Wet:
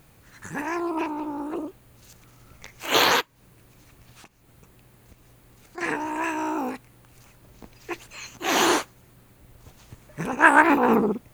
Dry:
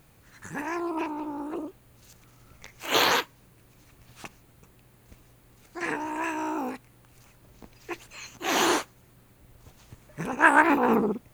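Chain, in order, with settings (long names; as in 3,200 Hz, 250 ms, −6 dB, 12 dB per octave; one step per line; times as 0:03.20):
0:03.21–0:05.78: downward compressor 16 to 1, threshold −49 dBFS, peak gain reduction 15 dB
level +3 dB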